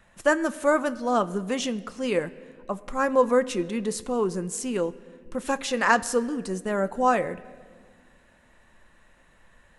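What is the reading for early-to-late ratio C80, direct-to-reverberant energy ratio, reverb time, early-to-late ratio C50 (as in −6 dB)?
19.5 dB, 11.5 dB, 1.7 s, 18.5 dB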